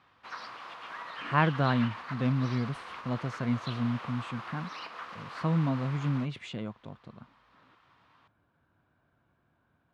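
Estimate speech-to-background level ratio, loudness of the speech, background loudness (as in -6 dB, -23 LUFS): 10.5 dB, -31.5 LUFS, -42.0 LUFS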